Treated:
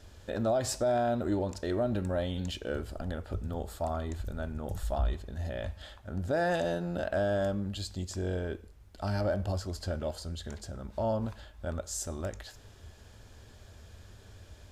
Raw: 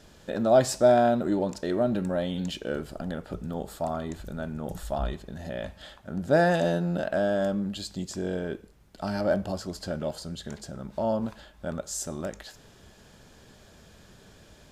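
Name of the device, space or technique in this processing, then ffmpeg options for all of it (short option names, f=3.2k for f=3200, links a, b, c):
car stereo with a boomy subwoofer: -af "lowshelf=f=120:t=q:w=3:g=6.5,alimiter=limit=-18dB:level=0:latency=1:release=88,volume=-3dB"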